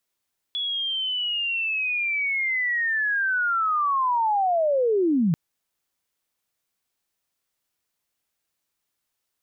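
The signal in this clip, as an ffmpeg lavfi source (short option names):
-f lavfi -i "aevalsrc='pow(10,(-24.5+7*t/4.79)/20)*sin(2*PI*(3400*t-3250*t*t/(2*4.79)))':d=4.79:s=44100"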